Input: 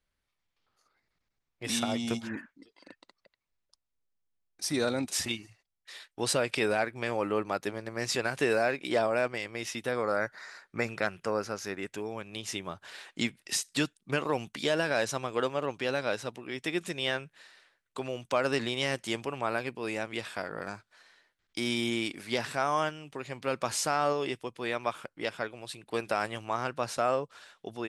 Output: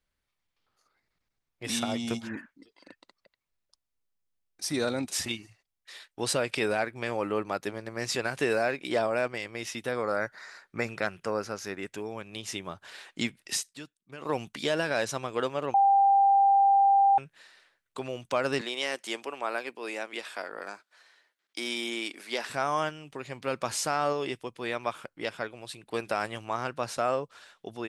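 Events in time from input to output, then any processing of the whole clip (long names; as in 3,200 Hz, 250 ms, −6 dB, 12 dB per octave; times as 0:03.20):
0:13.62–0:14.30: duck −15 dB, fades 0.12 s
0:15.74–0:17.18: beep over 792 Hz −17.5 dBFS
0:18.61–0:22.50: Bessel high-pass filter 370 Hz, order 4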